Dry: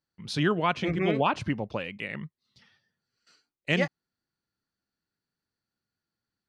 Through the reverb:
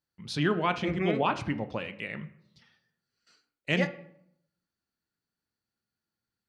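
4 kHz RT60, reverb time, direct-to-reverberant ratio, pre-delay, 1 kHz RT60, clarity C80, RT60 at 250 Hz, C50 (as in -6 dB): 0.45 s, 0.70 s, 9.5 dB, 6 ms, 0.70 s, 18.0 dB, 0.90 s, 14.5 dB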